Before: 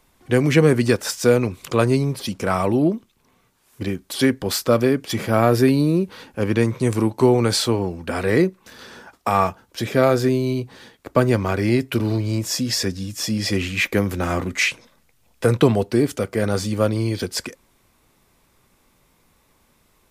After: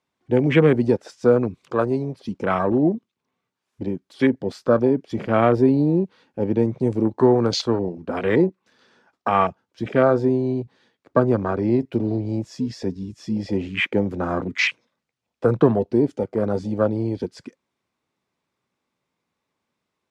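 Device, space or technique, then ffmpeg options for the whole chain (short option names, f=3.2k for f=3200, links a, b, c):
over-cleaned archive recording: -filter_complex "[0:a]asettb=1/sr,asplit=3[a][b][c];[a]atrim=end=1.714[d];[b]atrim=start=1.71:end=2.2,asetpts=PTS-STARTPTS,afade=t=in:d=0.004:c=qsin,afade=t=out:st=0.486:d=0.004:c=qsin,lowshelf=f=310:g=-6.5[e];[c]atrim=start=2.196[f];[d][e]acrossfade=d=0.004:c1=hsin:c2=qsin[g];[g][f]acrossfade=d=0.004:c1=qsin:c2=hsin,highpass=130,lowpass=5.8k,afwtdn=0.0562,asettb=1/sr,asplit=3[h][i][j];[h]atrim=end=11.364[k];[i]atrim=start=11.36:end=11.81,asetpts=PTS-STARTPTS,afade=t=in:d=0.004:c=qsin,afade=t=out:st=0.446:d=0.004:c=qsin,lowpass=10k[l];[j]atrim=start=11.806[m];[k][l]acrossfade=d=0.004:c1=hsin:c2=qsin[n];[n][m]acrossfade=d=0.004:c1=qsin:c2=hsin"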